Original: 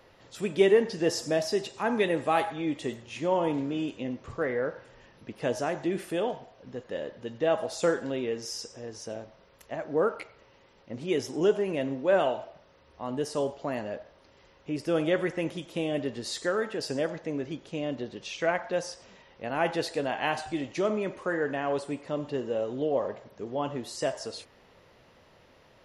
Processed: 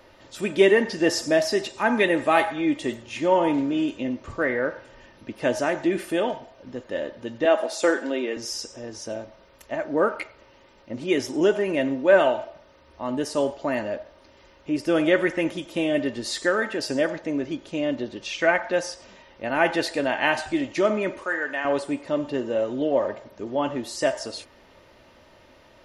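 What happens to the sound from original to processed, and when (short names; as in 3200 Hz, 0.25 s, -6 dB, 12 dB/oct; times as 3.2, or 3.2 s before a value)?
7.45–8.37 HPF 250 Hz 24 dB/oct
21.24–21.65 HPF 1000 Hz 6 dB/oct
whole clip: dynamic EQ 1900 Hz, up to +5 dB, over -45 dBFS, Q 1.6; comb 3.3 ms, depth 42%; gain +4.5 dB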